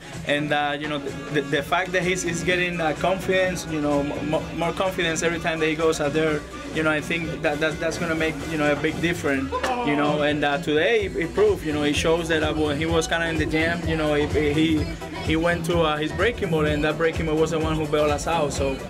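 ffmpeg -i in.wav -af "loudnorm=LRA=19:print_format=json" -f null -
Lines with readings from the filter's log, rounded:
"input_i" : "-22.9",
"input_tp" : "-9.2",
"input_lra" : "1.6",
"input_thresh" : "-32.9",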